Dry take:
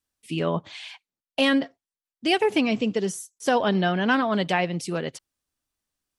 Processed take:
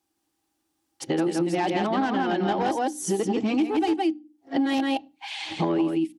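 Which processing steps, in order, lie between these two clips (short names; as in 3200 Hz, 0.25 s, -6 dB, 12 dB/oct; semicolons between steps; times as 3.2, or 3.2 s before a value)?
whole clip reversed; notches 60/120/180/240/300 Hz; echo 0.166 s -3.5 dB; in parallel at -5.5 dB: sine folder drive 9 dB, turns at -7.5 dBFS; on the sum: small resonant body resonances 320/800 Hz, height 18 dB, ringing for 70 ms; on a send at -21 dB: reverb RT60 0.25 s, pre-delay 3 ms; on the sum: compressor 6:1, threshold -16 dBFS, peak gain reduction 17.5 dB; HPF 73 Hz; gain -6 dB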